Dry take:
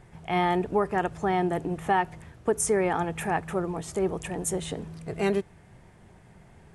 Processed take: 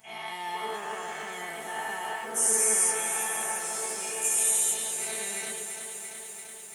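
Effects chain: spectral dilation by 0.48 s; tilt +4.5 dB/oct; resonator 220 Hz, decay 0.22 s, harmonics all, mix 90%; delay with a stepping band-pass 0.223 s, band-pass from 710 Hz, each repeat 0.7 oct, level -11 dB; lo-fi delay 0.34 s, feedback 80%, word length 8-bit, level -9 dB; gain -5 dB

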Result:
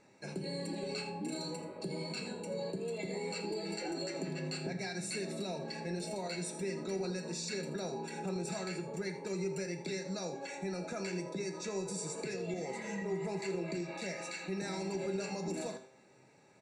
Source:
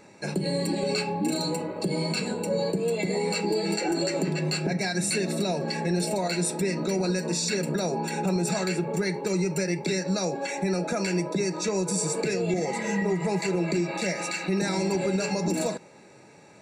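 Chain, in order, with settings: LPF 9600 Hz 12 dB/oct; resonator 130 Hz, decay 0.52 s, harmonics all, mix 70%; on a send: echo 82 ms -13.5 dB; on the sum: gain -3.5 dB

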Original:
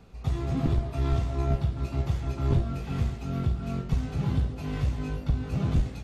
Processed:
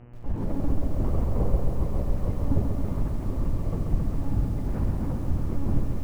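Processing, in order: LPF 1200 Hz 12 dB/oct; monotone LPC vocoder at 8 kHz 280 Hz; formant shift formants -3 st; buzz 120 Hz, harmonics 25, -50 dBFS -8 dB/oct; lo-fi delay 0.135 s, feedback 80%, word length 9-bit, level -5.5 dB; gain +1 dB

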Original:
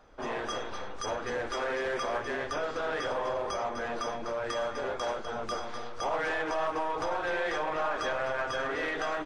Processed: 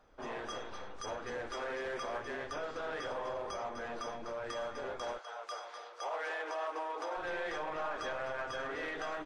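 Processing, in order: 5.17–7.16 HPF 620 Hz -> 290 Hz 24 dB/oct; gain -7 dB

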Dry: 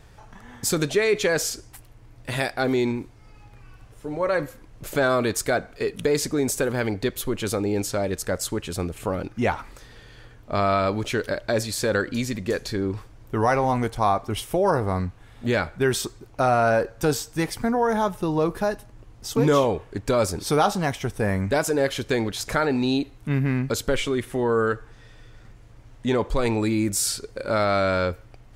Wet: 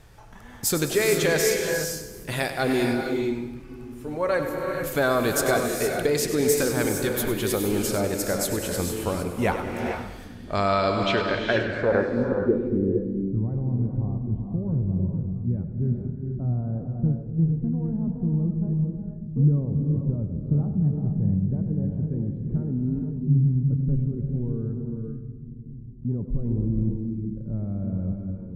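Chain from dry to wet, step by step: low-pass sweep 14000 Hz -> 160 Hz, 10.26–13.02; split-band echo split 310 Hz, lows 0.592 s, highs 99 ms, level -11 dB; non-linear reverb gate 0.49 s rising, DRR 3 dB; gain -1.5 dB

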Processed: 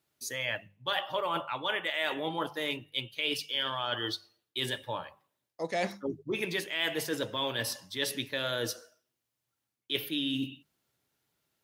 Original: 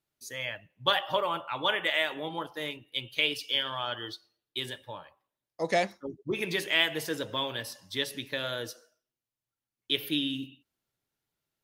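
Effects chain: reverse; compressor 6:1, threshold -36 dBFS, peak gain reduction 15.5 dB; reverse; HPF 60 Hz; notches 50/100/150/200 Hz; gain +7 dB

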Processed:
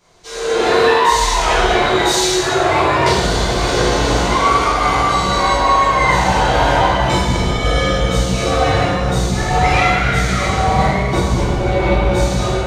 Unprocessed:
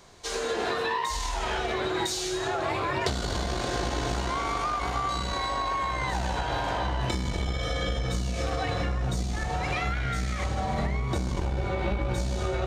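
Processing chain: AGC gain up to 15.5 dB; plate-style reverb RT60 1.2 s, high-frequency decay 0.8×, pre-delay 0 ms, DRR -9.5 dB; gain -8 dB

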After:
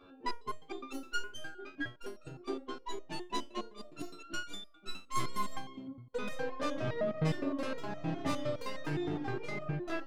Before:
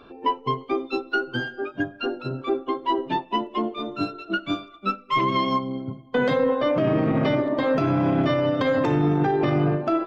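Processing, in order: tracing distortion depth 0.21 ms; stepped resonator 9.7 Hz 92–620 Hz

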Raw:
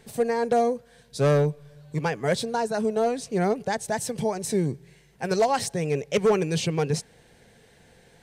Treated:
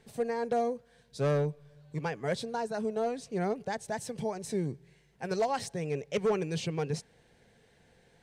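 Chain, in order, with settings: high shelf 9300 Hz -9 dB; gain -7.5 dB

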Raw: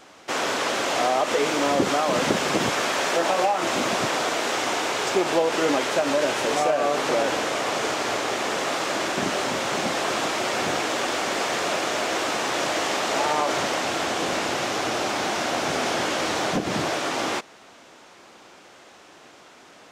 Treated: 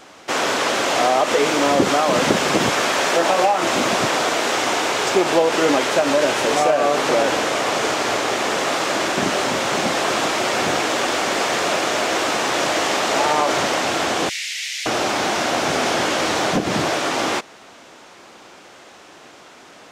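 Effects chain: 14.29–14.86 elliptic high-pass 2000 Hz, stop band 50 dB; gain +5 dB

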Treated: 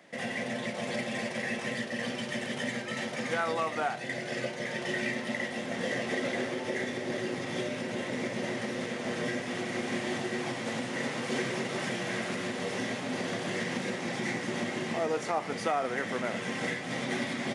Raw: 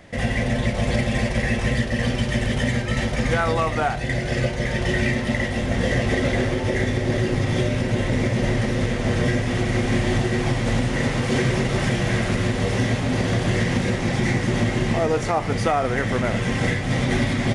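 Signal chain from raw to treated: HPF 160 Hz 24 dB/oct; low shelf 240 Hz -7 dB; gain -7.5 dB

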